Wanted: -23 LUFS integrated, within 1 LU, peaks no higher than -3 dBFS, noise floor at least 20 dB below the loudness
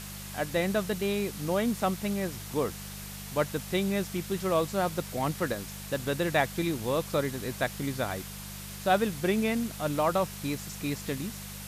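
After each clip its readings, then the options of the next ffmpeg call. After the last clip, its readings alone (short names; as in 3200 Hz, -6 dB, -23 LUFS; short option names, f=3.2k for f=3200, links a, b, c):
hum 50 Hz; harmonics up to 200 Hz; hum level -42 dBFS; noise floor -41 dBFS; noise floor target -51 dBFS; loudness -30.5 LUFS; peak -12.5 dBFS; loudness target -23.0 LUFS
-> -af "bandreject=f=50:t=h:w=4,bandreject=f=100:t=h:w=4,bandreject=f=150:t=h:w=4,bandreject=f=200:t=h:w=4"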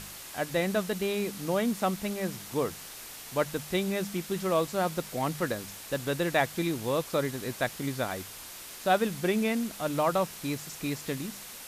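hum none; noise floor -44 dBFS; noise floor target -51 dBFS
-> -af "afftdn=nr=7:nf=-44"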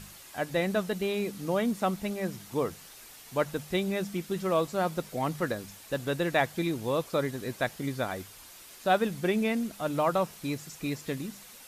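noise floor -50 dBFS; noise floor target -51 dBFS
-> -af "afftdn=nr=6:nf=-50"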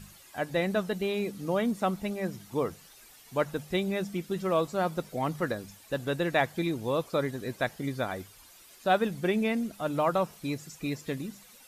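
noise floor -54 dBFS; loudness -31.0 LUFS; peak -12.0 dBFS; loudness target -23.0 LUFS
-> -af "volume=8dB"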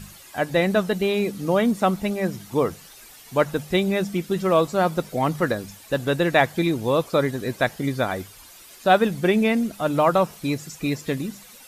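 loudness -23.0 LUFS; peak -4.0 dBFS; noise floor -46 dBFS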